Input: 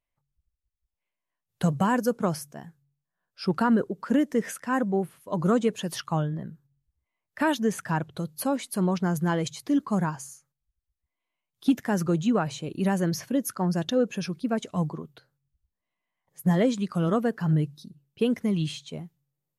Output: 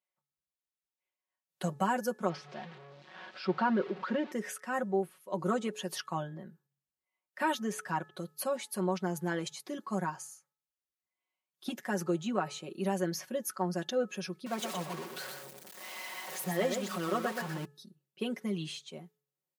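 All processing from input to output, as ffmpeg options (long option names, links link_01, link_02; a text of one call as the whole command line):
ffmpeg -i in.wav -filter_complex "[0:a]asettb=1/sr,asplit=3[link_01][link_02][link_03];[link_01]atrim=end=2.294[link_04];[link_02]atrim=start=2.29:end=4.32,asetpts=PTS-STARTPTS,afade=type=in:duration=0.004:curve=qsin,afade=type=out:start_time=2.026:duration=0.004:curve=qsin,aeval=exprs='val(0)+0.5*0.02*sgn(val(0))':channel_layout=same,lowpass=frequency=4200:width=0.5412,lowpass=frequency=4200:width=1.3066[link_05];[link_03]atrim=start=4.316[link_06];[link_04][link_05]acrossfade=duration=0.004:curve1=hsin:curve2=qsin[link_07];[link_07][link_06]acrossfade=duration=0.004:curve1=qsin:curve2=hsin,asettb=1/sr,asplit=3[link_08][link_09][link_10];[link_08]atrim=end=14.464[link_11];[link_09]atrim=start=14.46:end=17.65,asetpts=PTS-STARTPTS,afade=type=in:duration=0.004:curve=qsin,afade=type=out:start_time=3.186:duration=0.004:curve=qsin,aeval=exprs='val(0)+0.5*0.0316*sgn(val(0))':channel_layout=same,highpass=frequency=290:poles=1,aecho=1:1:123:0.501,atrim=end_sample=140679[link_12];[link_10]atrim=start=17.646[link_13];[link_11][link_12]acrossfade=duration=0.004:curve1=hsin:curve2=qsin[link_14];[link_14][link_13]acrossfade=duration=0.004:curve1=qsin:curve2=hsin,highpass=290,aecho=1:1:5.4:0.79,bandreject=frequency=429.2:width_type=h:width=4,bandreject=frequency=858.4:width_type=h:width=4,bandreject=frequency=1287.6:width_type=h:width=4,bandreject=frequency=1716.8:width_type=h:width=4,volume=-6.5dB" out.wav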